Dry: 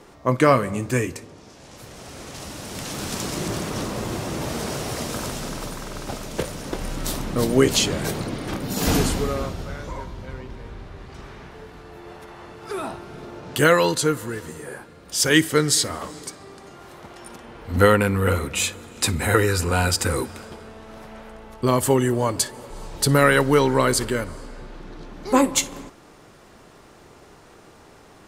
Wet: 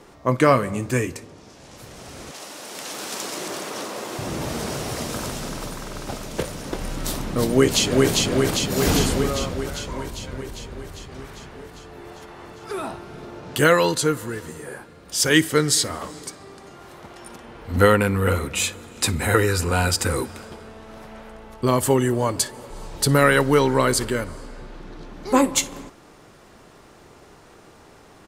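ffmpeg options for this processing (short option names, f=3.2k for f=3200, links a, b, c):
-filter_complex "[0:a]asettb=1/sr,asplit=3[a][b][c];[a]atrim=end=2.314[d];[b]atrim=start=2.31:end=4.19,asetpts=PTS-STARTPTS,afade=t=in:d=0.004:c=qsin,afade=t=out:st=1.876:d=0.004:c=qsin,highpass=380[e];[c]atrim=start=4.186[f];[d][e]acrossfade=d=0.004:c1=hsin:c2=qsin[g];[g][f]acrossfade=d=0.004:c1=qsin:c2=hsin,asplit=2[h][i];[i]afade=t=in:st=7.51:d=0.01,afade=t=out:st=8.1:d=0.01,aecho=0:1:400|800|1200|1600|2000|2400|2800|3200|3600|4000|4400|4800:0.841395|0.588977|0.412284|0.288599|0.202019|0.141413|0.0989893|0.0692925|0.0485048|0.0339533|0.0237673|0.0166371[j];[h][j]amix=inputs=2:normalize=0"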